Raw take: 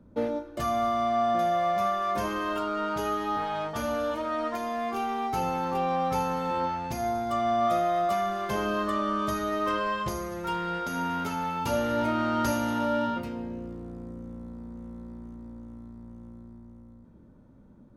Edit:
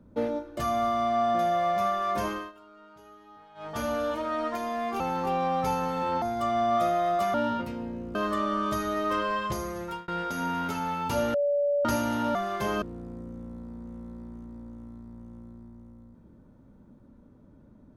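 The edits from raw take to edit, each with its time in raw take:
0:02.28–0:03.79: duck −22.5 dB, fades 0.24 s
0:05.00–0:05.48: remove
0:06.70–0:07.12: remove
0:08.24–0:08.71: swap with 0:12.91–0:13.72
0:10.38–0:10.64: fade out
0:11.90–0:12.41: beep over 575 Hz −22 dBFS

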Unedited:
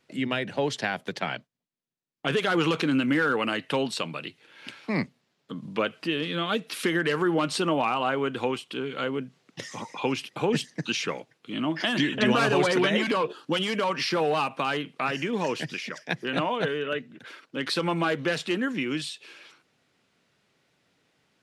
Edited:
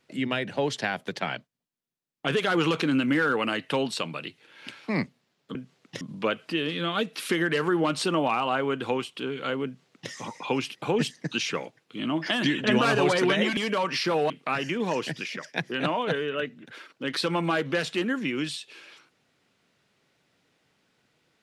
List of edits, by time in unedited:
0:09.19–0:09.65: duplicate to 0:05.55
0:13.11–0:13.63: remove
0:14.36–0:14.83: remove

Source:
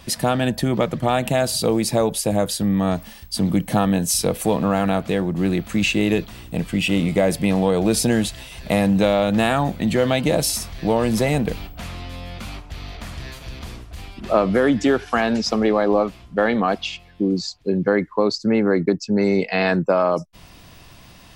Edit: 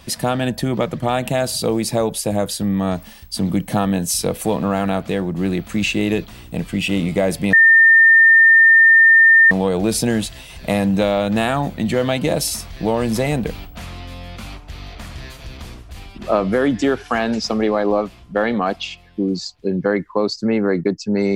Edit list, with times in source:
0:07.53: insert tone 1,810 Hz −6.5 dBFS 1.98 s

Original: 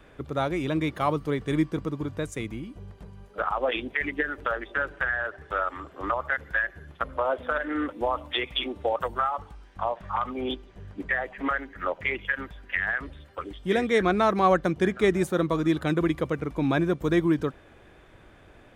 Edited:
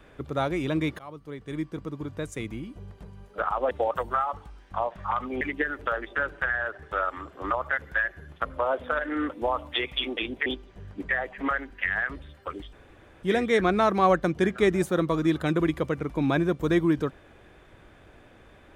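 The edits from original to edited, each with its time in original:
0:00.99–0:02.62: fade in, from −21.5 dB
0:03.71–0:04.00: swap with 0:08.76–0:10.46
0:11.70–0:12.61: remove
0:13.64: splice in room tone 0.50 s

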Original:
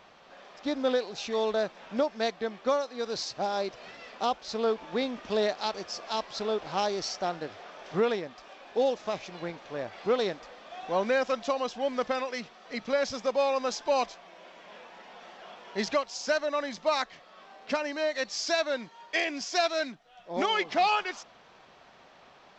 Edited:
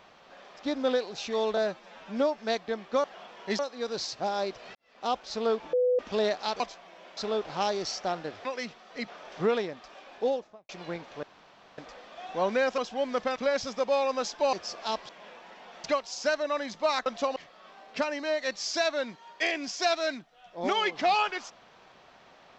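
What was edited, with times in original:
0:01.57–0:02.11: time-stretch 1.5×
0:03.93–0:04.30: fade in quadratic
0:04.91–0:05.17: beep over 498 Hz −21 dBFS
0:05.78–0:06.34: swap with 0:14.00–0:14.57
0:08.67–0:09.23: fade out and dull
0:09.77–0:10.32: fill with room tone
0:11.32–0:11.62: move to 0:17.09
0:12.20–0:12.83: move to 0:07.62
0:15.32–0:15.87: move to 0:02.77

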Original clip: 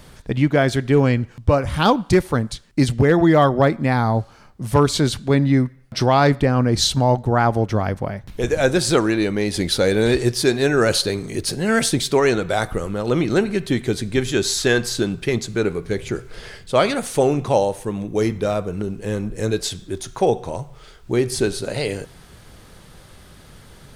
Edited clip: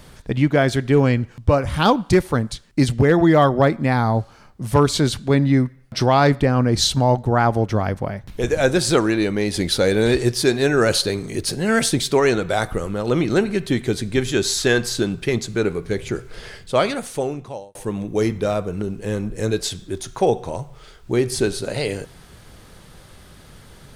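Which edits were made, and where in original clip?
0:16.62–0:17.75: fade out

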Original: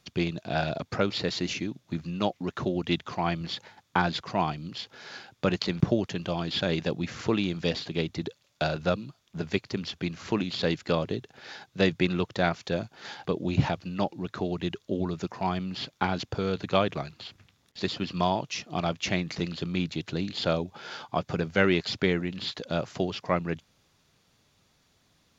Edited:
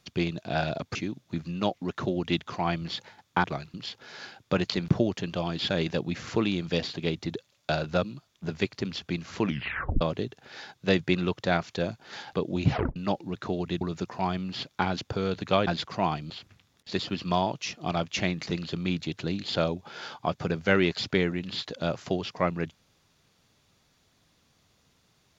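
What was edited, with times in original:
0:00.95–0:01.54: remove
0:04.03–0:04.66: swap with 0:16.89–0:17.19
0:10.36: tape stop 0.57 s
0:13.63: tape stop 0.25 s
0:14.73–0:15.03: remove

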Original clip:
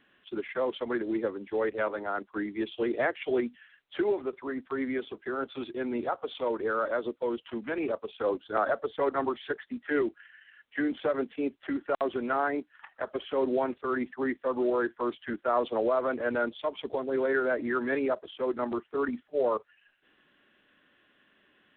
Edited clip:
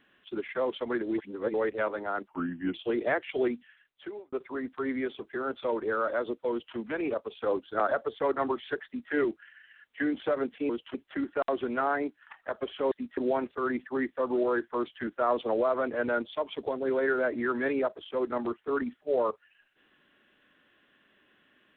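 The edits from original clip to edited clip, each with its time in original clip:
0:01.18–0:01.54: reverse
0:02.28–0:02.67: play speed 84%
0:03.38–0:04.25: fade out
0:05.57–0:06.42: remove
0:07.29–0:07.54: duplicate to 0:11.47
0:09.63–0:09.89: duplicate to 0:13.44

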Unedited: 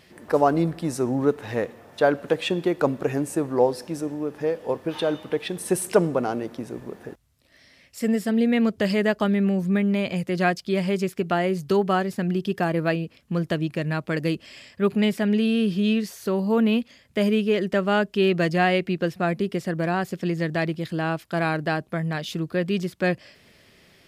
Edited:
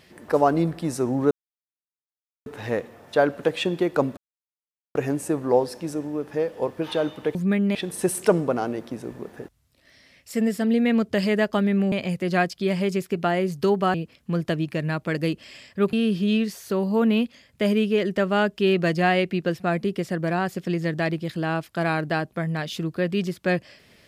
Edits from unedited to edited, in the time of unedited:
0:01.31: splice in silence 1.15 s
0:03.02: splice in silence 0.78 s
0:09.59–0:09.99: move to 0:05.42
0:12.01–0:12.96: remove
0:14.95–0:15.49: remove

